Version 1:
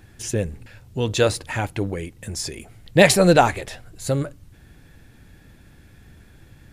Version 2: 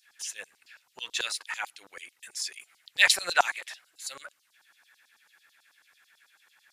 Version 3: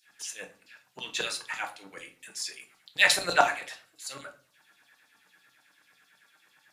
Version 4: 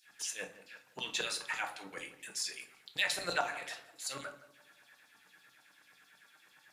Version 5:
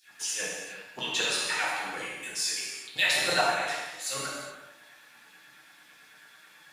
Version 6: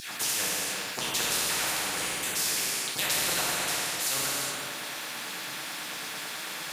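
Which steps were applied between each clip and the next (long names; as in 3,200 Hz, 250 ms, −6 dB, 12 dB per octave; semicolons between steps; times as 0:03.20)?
auto-filter high-pass saw down 9.1 Hz 910–5,600 Hz; level −6.5 dB
parametric band 200 Hz +12 dB 2.9 octaves; convolution reverb RT60 0.45 s, pre-delay 6 ms, DRR 4 dB; level −2.5 dB
downward compressor 3 to 1, threshold −33 dBFS, peak gain reduction 13.5 dB; tape delay 168 ms, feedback 44%, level −13 dB, low-pass 1,300 Hz
reverb whose tail is shaped and stops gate 440 ms falling, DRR −5 dB; level +3 dB
high-pass filter 120 Hz 6 dB per octave; every bin compressed towards the loudest bin 4 to 1; level −2.5 dB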